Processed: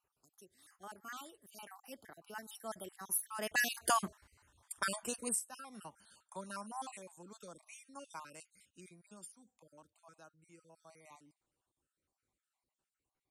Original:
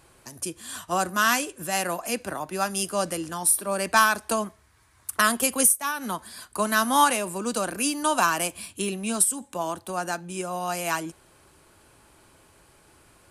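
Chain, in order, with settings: random holes in the spectrogram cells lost 45%; Doppler pass-by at 4.05 s, 34 m/s, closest 7 m

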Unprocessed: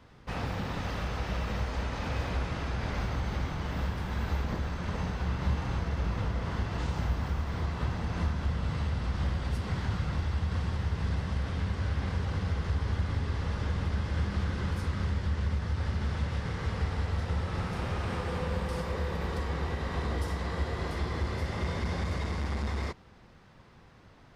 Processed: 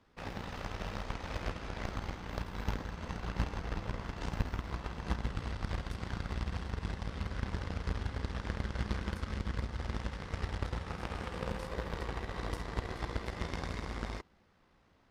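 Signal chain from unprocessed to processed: peaking EQ 120 Hz -15 dB 0.36 oct; granular stretch 0.62×, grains 34 ms; Chebyshev shaper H 3 -11 dB, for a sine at -19 dBFS; trim +7 dB

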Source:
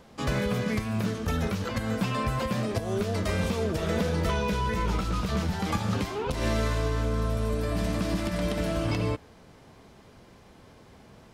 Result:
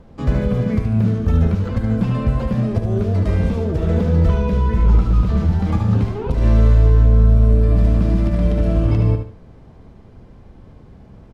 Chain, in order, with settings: tilt EQ -3.5 dB/octave; feedback delay 73 ms, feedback 28%, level -7 dB

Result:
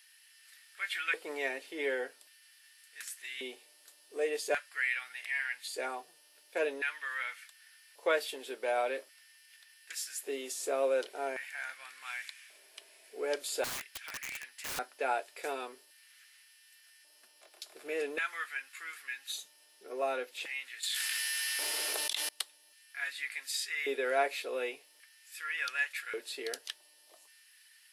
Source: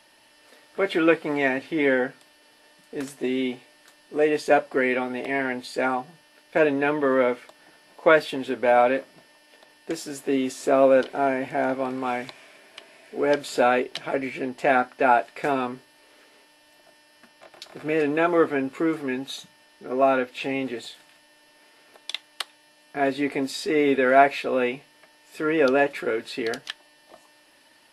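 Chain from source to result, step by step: LFO high-pass square 0.44 Hz 420–1700 Hz; pre-emphasis filter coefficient 0.9; 13.64–14.79 s: integer overflow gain 33.5 dB; 20.83–22.29 s: level flattener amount 100%

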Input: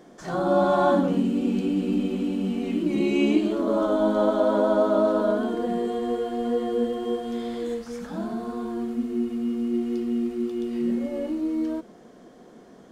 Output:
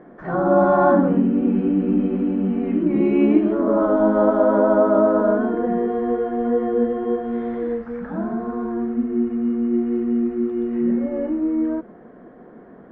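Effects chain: Chebyshev low-pass 1.8 kHz, order 3; trim +5.5 dB

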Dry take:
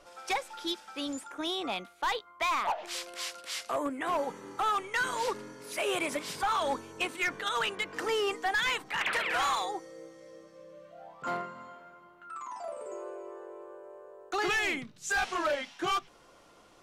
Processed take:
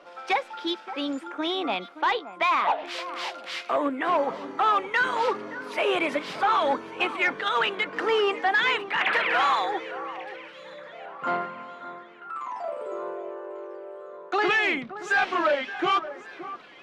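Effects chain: three-band isolator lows -22 dB, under 150 Hz, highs -21 dB, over 4 kHz; echo whose repeats swap between lows and highs 572 ms, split 1.9 kHz, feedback 62%, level -13.5 dB; trim +7 dB

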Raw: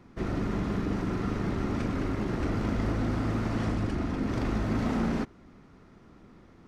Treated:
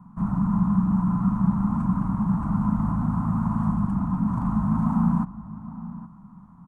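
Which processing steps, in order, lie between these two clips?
FFT filter 100 Hz 0 dB, 190 Hz +15 dB, 420 Hz -26 dB, 1 kHz +12 dB, 2 kHz -19 dB, 5.3 kHz -23 dB, 8.1 kHz -5 dB; echo from a far wall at 140 m, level -15 dB

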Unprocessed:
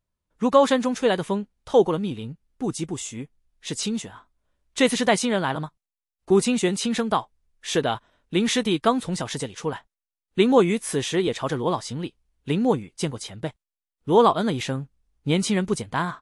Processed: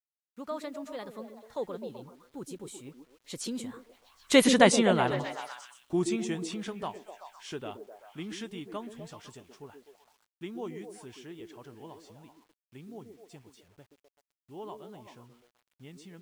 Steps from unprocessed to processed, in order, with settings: Doppler pass-by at 4.54 s, 35 m/s, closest 15 m; repeats whose band climbs or falls 127 ms, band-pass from 320 Hz, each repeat 0.7 oct, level -4 dB; bit crusher 11-bit

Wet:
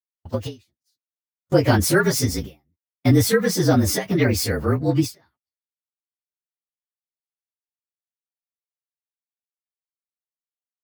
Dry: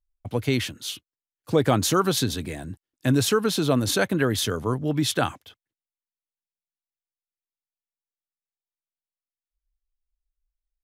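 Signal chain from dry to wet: frequency axis rescaled in octaves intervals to 113%; gate -38 dBFS, range -53 dB; endings held to a fixed fall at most 230 dB/s; trim +7 dB

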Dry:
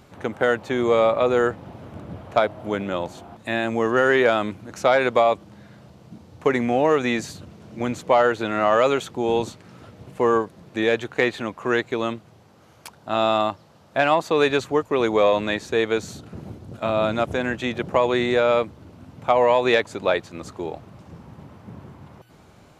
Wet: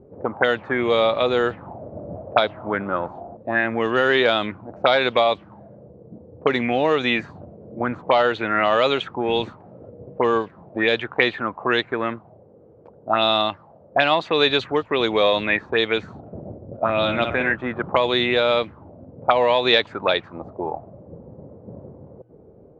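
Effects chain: 16.92–17.52 s: flutter echo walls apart 10.1 m, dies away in 0.52 s; touch-sensitive low-pass 440–3800 Hz up, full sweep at -16 dBFS; trim -1 dB

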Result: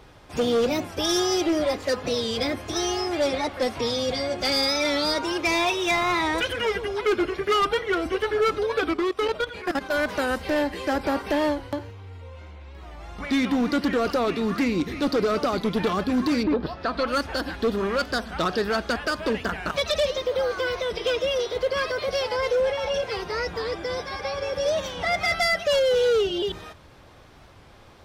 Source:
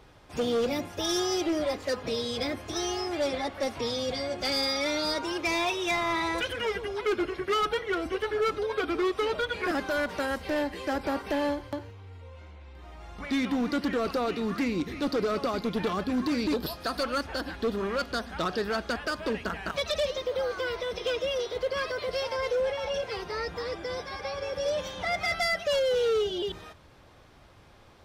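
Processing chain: 5.76–6.20 s: crackle 530 per s -46 dBFS; 8.94–10.04 s: level held to a coarse grid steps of 14 dB; 16.42–17.06 s: low-pass 1.5 kHz -> 3.7 kHz 12 dB/octave; warped record 45 rpm, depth 100 cents; trim +5 dB

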